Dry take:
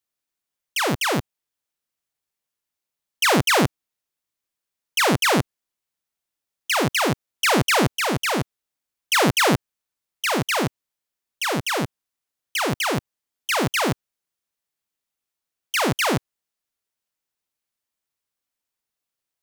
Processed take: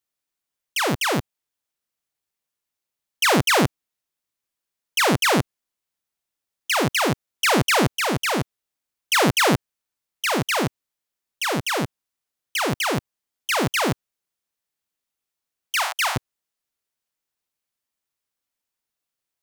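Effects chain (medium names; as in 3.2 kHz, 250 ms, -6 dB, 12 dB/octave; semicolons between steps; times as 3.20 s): 15.76–16.16 s: steep high-pass 700 Hz 48 dB/octave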